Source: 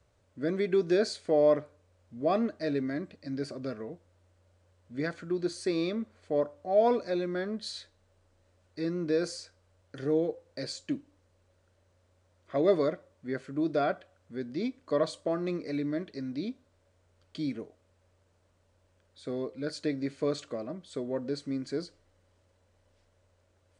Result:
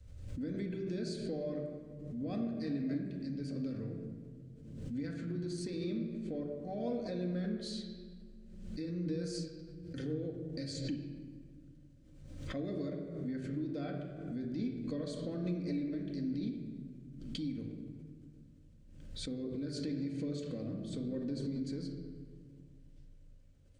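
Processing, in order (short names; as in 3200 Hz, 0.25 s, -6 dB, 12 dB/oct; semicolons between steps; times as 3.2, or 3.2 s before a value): passive tone stack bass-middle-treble 10-0-1; compressor, threshold -54 dBFS, peak gain reduction 11 dB; reverb RT60 1.8 s, pre-delay 4 ms, DRR 0 dB; backwards sustainer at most 45 dB/s; gain +15.5 dB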